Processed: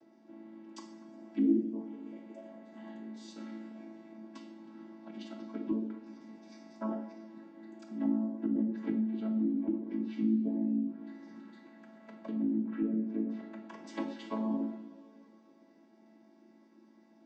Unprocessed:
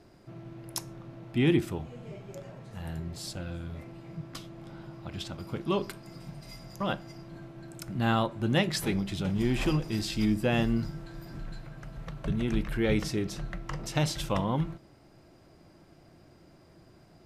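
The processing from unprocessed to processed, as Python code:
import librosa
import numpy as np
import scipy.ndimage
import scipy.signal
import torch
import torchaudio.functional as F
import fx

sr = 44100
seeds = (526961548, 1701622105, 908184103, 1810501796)

y = fx.chord_vocoder(x, sr, chord='major triad', root=57)
y = fx.env_lowpass_down(y, sr, base_hz=310.0, full_db=-24.5)
y = fx.rev_double_slope(y, sr, seeds[0], early_s=0.6, late_s=3.7, knee_db=-18, drr_db=3.0)
y = y * librosa.db_to_amplitude(-3.0)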